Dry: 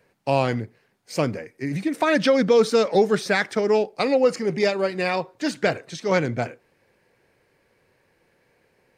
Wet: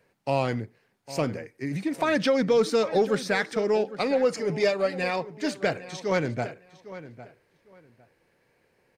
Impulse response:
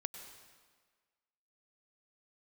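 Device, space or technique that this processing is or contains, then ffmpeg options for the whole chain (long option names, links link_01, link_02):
parallel distortion: -filter_complex "[0:a]asplit=2[link_01][link_02];[link_02]asoftclip=type=hard:threshold=-21dB,volume=-11.5dB[link_03];[link_01][link_03]amix=inputs=2:normalize=0,asettb=1/sr,asplit=3[link_04][link_05][link_06];[link_04]atrim=end=4.324[link_07];[link_05]atrim=start=4.32:end=5.04,asetpts=PTS-STARTPTS,afade=type=in:duration=0.004:curve=qsin,afade=type=out:start_time=0.716:duration=0.004:curve=qsin,aecho=1:1:6.8:0.58,atrim=end_sample=31752[link_08];[link_06]atrim=start=5.036[link_09];[link_07][link_08]acrossfade=duration=0.004:curve1=hsin:curve2=qsin[link_10];[link_10][link_09]acrossfade=duration=0.004:curve1=qsin:curve2=hsin,asplit=2[link_11][link_12];[link_12]adelay=805,lowpass=frequency=3200:poles=1,volume=-15dB,asplit=2[link_13][link_14];[link_14]adelay=805,lowpass=frequency=3200:poles=1,volume=0.21[link_15];[link_11][link_13][link_15]amix=inputs=3:normalize=0,volume=-5.5dB"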